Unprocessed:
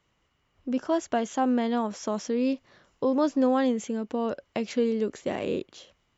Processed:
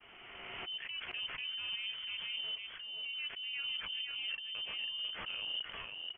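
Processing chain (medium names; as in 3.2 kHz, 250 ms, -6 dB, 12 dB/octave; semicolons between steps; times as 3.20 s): elliptic high-pass 200 Hz; transient shaper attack -8 dB, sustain -3 dB; reverse; compression 12:1, threshold -43 dBFS, peak gain reduction 23 dB; reverse; granulator 100 ms, grains 20 per s, spray 10 ms, pitch spread up and down by 0 st; delay 498 ms -3.5 dB; careless resampling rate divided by 8×, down none, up hold; frequency inversion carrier 3.3 kHz; swell ahead of each attack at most 26 dB/s; trim +4.5 dB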